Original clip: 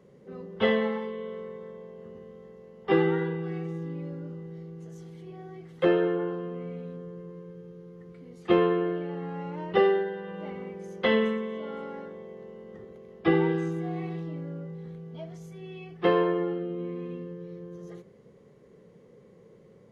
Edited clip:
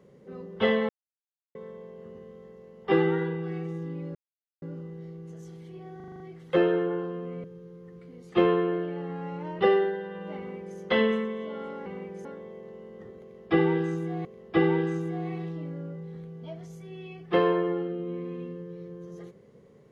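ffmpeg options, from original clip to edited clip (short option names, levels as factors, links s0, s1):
-filter_complex "[0:a]asplit=14[s0][s1][s2][s3][s4][s5][s6][s7][s8][s9][s10][s11][s12][s13];[s0]atrim=end=0.89,asetpts=PTS-STARTPTS,afade=t=out:st=0.886:d=0.004:c=hsin[s14];[s1]atrim=start=0.89:end=1.55,asetpts=PTS-STARTPTS,volume=0[s15];[s2]atrim=start=1.55:end=4.15,asetpts=PTS-STARTPTS,afade=t=in:d=0.004:c=hsin,afade=t=out:st=2.596:d=0.004:c=hsin,apad=pad_dur=0.47[s16];[s3]atrim=start=4.15:end=5.532,asetpts=PTS-STARTPTS,afade=t=in:d=0.004:c=hsin[s17];[s4]atrim=start=5.488:end=5.532[s18];[s5]atrim=start=5.488:end=5.532[s19];[s6]atrim=start=5.488:end=5.532[s20];[s7]atrim=start=5.488:end=5.532[s21];[s8]atrim=start=5.488:end=5.532[s22];[s9]atrim=start=5.488:end=6.732[s23];[s10]atrim=start=7.568:end=11.992[s24];[s11]atrim=start=10.508:end=10.902[s25];[s12]atrim=start=11.988:end=13.992[s26];[s13]atrim=start=12.958[s27];[s14][s15][s16][s17]concat=n=4:v=0:a=1[s28];[s28][s18]acrossfade=d=0.004:c1=hsin:c2=hsin[s29];[s29][s19]acrossfade=d=0.004:c1=hsin:c2=hsin[s30];[s30][s20]acrossfade=d=0.004:c1=hsin:c2=hsin[s31];[s31][s21]acrossfade=d=0.004:c1=hsin:c2=hsin[s32];[s32][s22]acrossfade=d=0.004:c1=hsin:c2=hsin[s33];[s33][s23]acrossfade=d=0.004:c1=hsin:c2=hsin[s34];[s34][s24]acrossfade=d=0.004:c1=hsin:c2=hsin[s35];[s35][s25]acrossfade=d=0.004:c1=hsin:c2=hsin[s36];[s36][s26]acrossfade=d=0.004:c1=hsin:c2=hsin[s37];[s37][s27]acrossfade=d=0.004:c1=hsin:c2=hsin"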